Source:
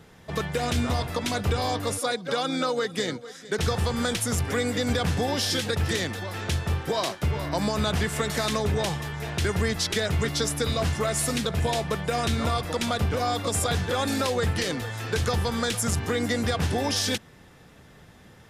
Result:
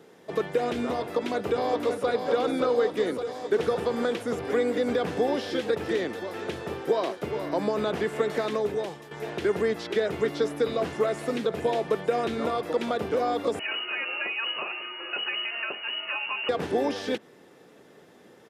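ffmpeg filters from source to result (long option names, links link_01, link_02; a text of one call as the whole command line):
ffmpeg -i in.wav -filter_complex "[0:a]asplit=2[link_01][link_02];[link_02]afade=type=in:start_time=0.99:duration=0.01,afade=type=out:start_time=2.08:duration=0.01,aecho=0:1:570|1140|1710|2280|2850|3420|3990|4560|5130|5700|6270|6840:0.501187|0.37589|0.281918|0.211438|0.158579|0.118934|0.0892006|0.0669004|0.0501753|0.0376315|0.0282236|0.0211677[link_03];[link_01][link_03]amix=inputs=2:normalize=0,asettb=1/sr,asplit=3[link_04][link_05][link_06];[link_04]atrim=end=13.594[link_07];[link_05]atrim=start=13.59:end=16.49,asetpts=PTS-STARTPTS,afade=type=in:duration=0.004:curve=qsin,afade=type=out:start_time=2.896:duration=0.004:curve=qsin,lowpass=frequency=2600:width_type=q:width=0.5098,lowpass=frequency=2600:width_type=q:width=0.6013,lowpass=frequency=2600:width_type=q:width=0.9,lowpass=frequency=2600:width_type=q:width=2.563,afreqshift=-3000[link_08];[link_06]atrim=start=16.486[link_09];[link_07][link_08]acrossfade=duration=0.004:curve1=hsin:curve2=qsin[link_10];[link_10][link_09]acrossfade=duration=0.004:curve1=qsin:curve2=hsin,asplit=2[link_11][link_12];[link_11]atrim=end=9.11,asetpts=PTS-STARTPTS,afade=type=out:start_time=8.39:duration=0.72:silence=0.266073[link_13];[link_12]atrim=start=9.11,asetpts=PTS-STARTPTS,afade=type=in:duration=0.004:curve=hsin:silence=0.266073[link_14];[link_13][link_14]concat=n=2:v=0:a=1,highpass=220,equalizer=frequency=400:width=1:gain=10.5,acrossover=split=3400[link_15][link_16];[link_16]acompressor=threshold=-46dB:ratio=4:attack=1:release=60[link_17];[link_15][link_17]amix=inputs=2:normalize=0,volume=-4.5dB" out.wav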